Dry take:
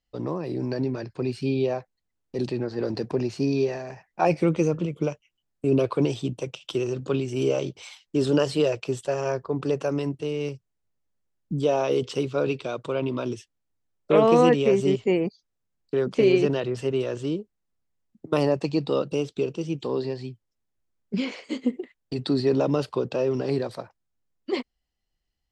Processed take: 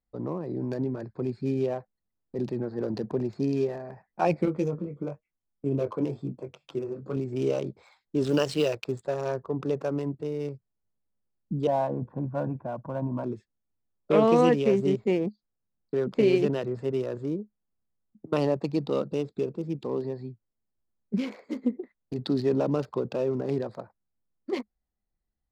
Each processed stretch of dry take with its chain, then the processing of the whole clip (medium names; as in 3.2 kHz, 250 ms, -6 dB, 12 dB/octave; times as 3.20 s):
4.45–7.17 s: band-stop 3.8 kHz, Q 6.8 + flange 1 Hz, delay 2.6 ms, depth 9.1 ms, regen -44% + doubling 21 ms -7 dB
8.26–8.92 s: companding laws mixed up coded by A + treble shelf 2.1 kHz +6.5 dB
11.67–13.24 s: low-pass 1.4 kHz 24 dB/octave + comb 1.2 ms, depth 84%
whole clip: local Wiener filter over 15 samples; peaking EQ 210 Hz +6.5 dB 0.2 oct; trim -3 dB